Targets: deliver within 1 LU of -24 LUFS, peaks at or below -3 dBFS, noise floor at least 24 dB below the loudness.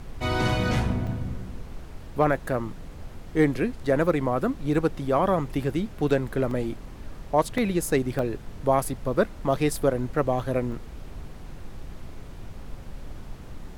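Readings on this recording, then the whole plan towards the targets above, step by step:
dropouts 6; longest dropout 2.5 ms; noise floor -41 dBFS; noise floor target -50 dBFS; loudness -26.0 LUFS; peak -9.0 dBFS; loudness target -24.0 LUFS
-> interpolate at 1.07/6.51/7.58/8.19/8.85/10.72, 2.5 ms; noise print and reduce 9 dB; gain +2 dB

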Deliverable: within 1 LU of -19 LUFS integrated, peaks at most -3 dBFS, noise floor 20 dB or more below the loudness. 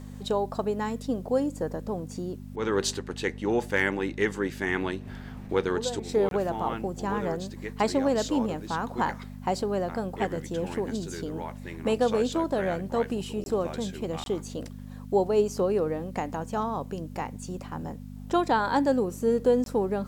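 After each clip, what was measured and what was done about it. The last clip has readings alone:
dropouts 4; longest dropout 22 ms; hum 50 Hz; harmonics up to 250 Hz; hum level -38 dBFS; loudness -29.0 LUFS; peak -11.5 dBFS; loudness target -19.0 LUFS
-> interpolate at 6.29/13.44/14.24/19.64, 22 ms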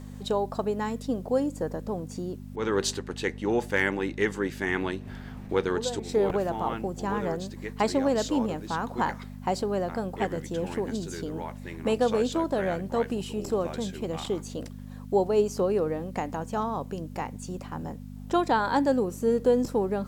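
dropouts 0; hum 50 Hz; harmonics up to 250 Hz; hum level -38 dBFS
-> de-hum 50 Hz, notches 5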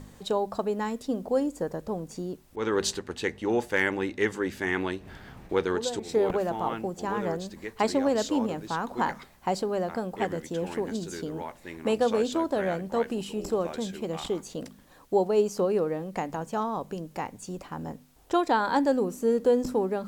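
hum none; loudness -29.0 LUFS; peak -11.5 dBFS; loudness target -19.0 LUFS
-> gain +10 dB; limiter -3 dBFS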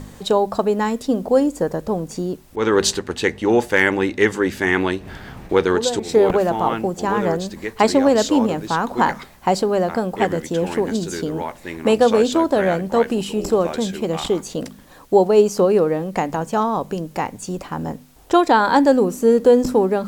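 loudness -19.0 LUFS; peak -3.0 dBFS; noise floor -44 dBFS

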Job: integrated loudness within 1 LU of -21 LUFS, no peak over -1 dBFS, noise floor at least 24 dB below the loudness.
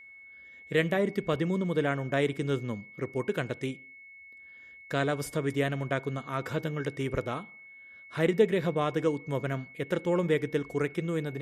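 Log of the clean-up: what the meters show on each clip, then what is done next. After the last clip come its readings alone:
steady tone 2200 Hz; tone level -48 dBFS; loudness -30.5 LUFS; peak -11.5 dBFS; loudness target -21.0 LUFS
-> notch 2200 Hz, Q 30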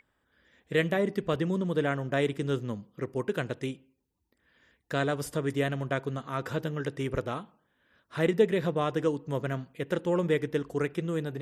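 steady tone none; loudness -30.5 LUFS; peak -11.5 dBFS; loudness target -21.0 LUFS
-> gain +9.5 dB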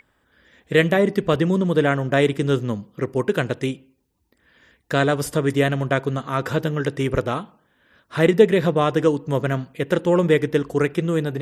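loudness -21.0 LUFS; peak -2.0 dBFS; noise floor -66 dBFS

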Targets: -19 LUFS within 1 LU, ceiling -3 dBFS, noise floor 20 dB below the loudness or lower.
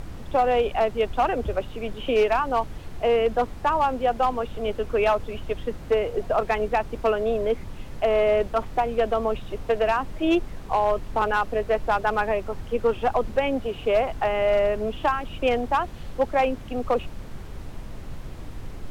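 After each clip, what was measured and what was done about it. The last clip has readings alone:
clipped 0.9%; flat tops at -14.0 dBFS; noise floor -38 dBFS; noise floor target -45 dBFS; loudness -24.5 LUFS; peak -14.0 dBFS; loudness target -19.0 LUFS
-> clip repair -14 dBFS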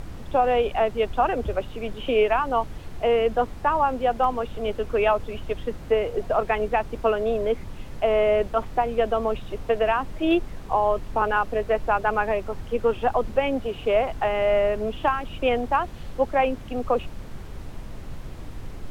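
clipped 0.0%; noise floor -38 dBFS; noise floor target -45 dBFS
-> noise print and reduce 7 dB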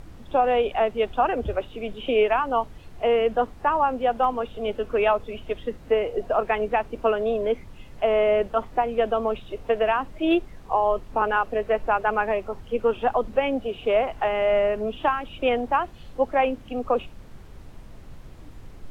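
noise floor -44 dBFS; noise floor target -45 dBFS
-> noise print and reduce 6 dB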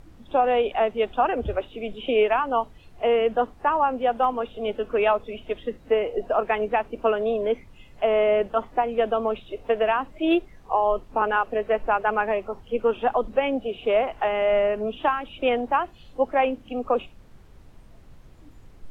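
noise floor -49 dBFS; loudness -24.5 LUFS; peak -9.0 dBFS; loudness target -19.0 LUFS
-> gain +5.5 dB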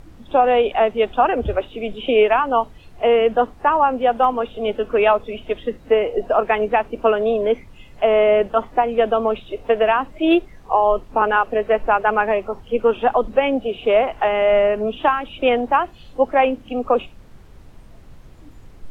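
loudness -19.0 LUFS; peak -3.5 dBFS; noise floor -44 dBFS

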